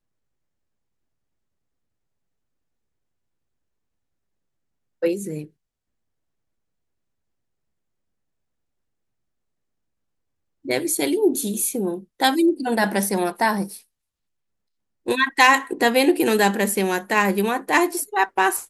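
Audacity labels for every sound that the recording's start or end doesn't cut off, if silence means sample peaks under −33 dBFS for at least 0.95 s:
5.020000	5.450000	sound
10.650000	13.770000	sound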